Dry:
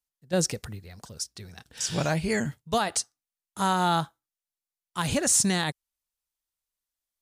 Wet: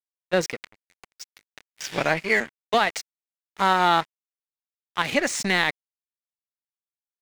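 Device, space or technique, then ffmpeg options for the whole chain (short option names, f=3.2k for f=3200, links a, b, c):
pocket radio on a weak battery: -filter_complex "[0:a]asettb=1/sr,asplit=3[a][b][c];[a]atrim=end=2.224[d];[b]atrim=start=2.22:end=2.74,asetpts=PTS-STARTPTS,afade=t=in:d=0.004:c=qsin,afade=t=out:st=0.516:d=0.004:c=qsin,highpass=220[e];[c]atrim=start=2.736[f];[d][e]acrossfade=d=0.004:c1=hsin:c2=qsin[g];[g][f]acrossfade=d=0.004:c1=qsin:c2=hsin,highpass=270,lowpass=4.2k,aeval=exprs='sgn(val(0))*max(abs(val(0))-0.0106,0)':c=same,equalizer=f=2.1k:t=o:w=0.53:g=9,volume=6dB"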